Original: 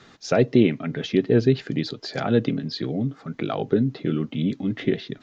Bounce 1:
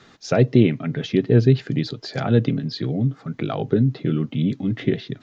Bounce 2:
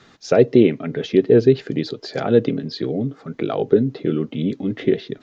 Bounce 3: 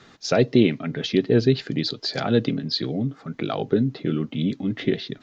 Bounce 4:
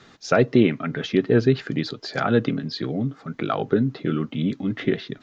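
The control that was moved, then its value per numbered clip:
dynamic bell, frequency: 120 Hz, 440 Hz, 4.4 kHz, 1.3 kHz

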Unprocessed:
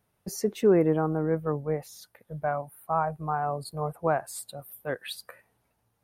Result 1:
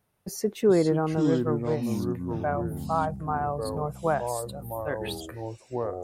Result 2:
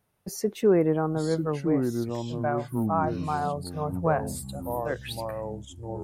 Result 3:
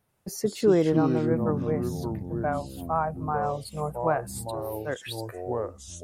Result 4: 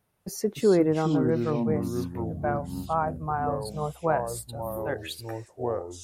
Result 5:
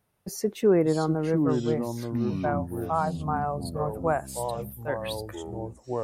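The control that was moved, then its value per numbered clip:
ever faster or slower copies, time: 331 ms, 798 ms, 86 ms, 211 ms, 496 ms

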